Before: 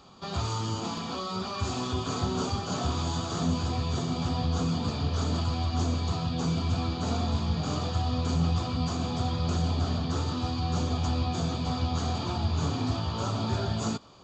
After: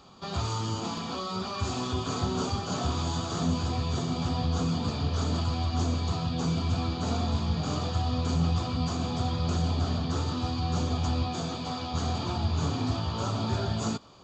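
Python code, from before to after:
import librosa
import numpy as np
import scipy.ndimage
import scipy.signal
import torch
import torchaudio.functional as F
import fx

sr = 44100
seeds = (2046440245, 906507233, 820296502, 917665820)

y = fx.highpass(x, sr, hz=fx.line((11.26, 160.0), (11.93, 360.0)), slope=6, at=(11.26, 11.93), fade=0.02)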